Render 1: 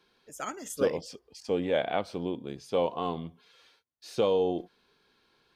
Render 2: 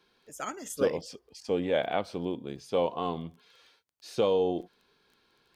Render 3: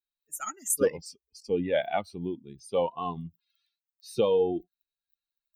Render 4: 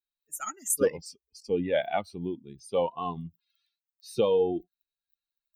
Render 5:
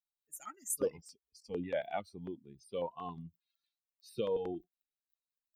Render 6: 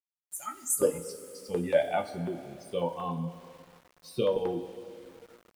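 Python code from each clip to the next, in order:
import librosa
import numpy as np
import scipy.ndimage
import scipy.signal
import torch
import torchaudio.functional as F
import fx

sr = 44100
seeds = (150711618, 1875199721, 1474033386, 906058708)

y1 = fx.dmg_crackle(x, sr, seeds[0], per_s=11.0, level_db=-48.0)
y2 = fx.bin_expand(y1, sr, power=2.0)
y2 = fx.high_shelf_res(y2, sr, hz=6800.0, db=10.5, q=1.5)
y2 = y2 * 10.0 ** (4.5 / 20.0)
y3 = y2
y4 = fx.filter_held_notch(y3, sr, hz=11.0, low_hz=360.0, high_hz=6600.0)
y4 = y4 * 10.0 ** (-8.5 / 20.0)
y5 = fx.rev_double_slope(y4, sr, seeds[1], early_s=0.25, late_s=3.2, knee_db=-18, drr_db=2.0)
y5 = np.where(np.abs(y5) >= 10.0 ** (-59.0 / 20.0), y5, 0.0)
y5 = y5 * 10.0 ** (6.5 / 20.0)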